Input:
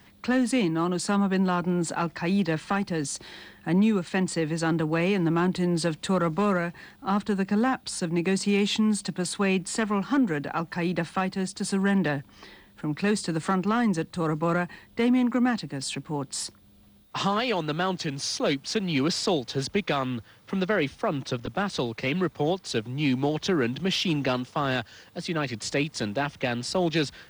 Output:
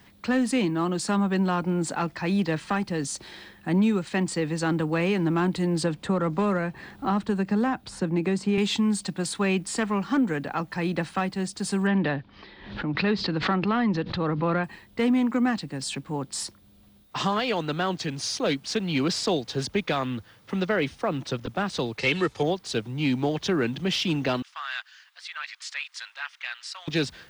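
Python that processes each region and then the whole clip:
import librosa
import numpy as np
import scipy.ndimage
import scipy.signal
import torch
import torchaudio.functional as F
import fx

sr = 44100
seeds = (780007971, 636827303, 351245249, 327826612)

y = fx.chain(x, sr, fx.high_shelf(hz=2200.0, db=-8.5),
    fx.band_squash(depth_pct=70), at=(5.83, 8.58))
y = fx.chain(y, sr, fx.steep_lowpass(hz=4600.0, slope=36),
    fx.pre_swell(db_per_s=79.0), at=(11.87, 14.64))
y = fx.chain(y, sr, fx.lowpass(hz=10000.0, slope=12),
    fx.high_shelf(hz=2600.0, db=11.0),
    fx.comb(ms=2.3, depth=0.41), at=(21.99, 22.43))
y = fx.chain(y, sr, fx.cheby2_highpass(hz=280.0, order=4, stop_db=70),
    fx.high_shelf(hz=6300.0, db=-11.5), at=(24.42, 26.88))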